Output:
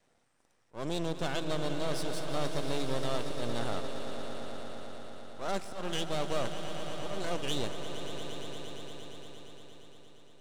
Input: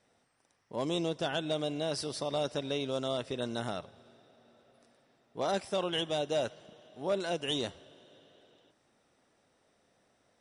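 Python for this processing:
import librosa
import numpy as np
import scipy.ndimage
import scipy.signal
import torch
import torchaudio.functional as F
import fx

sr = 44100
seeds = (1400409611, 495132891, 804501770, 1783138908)

p1 = fx.high_shelf(x, sr, hz=3700.0, db=-7.0)
p2 = np.maximum(p1, 0.0)
p3 = fx.peak_eq(p2, sr, hz=8000.0, db=6.0, octaves=0.88)
p4 = 10.0 ** (-32.0 / 20.0) * np.tanh(p3 / 10.0 ** (-32.0 / 20.0))
p5 = p3 + (p4 * 10.0 ** (-5.5 / 20.0))
p6 = fx.auto_swell(p5, sr, attack_ms=157.0)
y = p6 + fx.echo_swell(p6, sr, ms=116, loudest=5, wet_db=-12, dry=0)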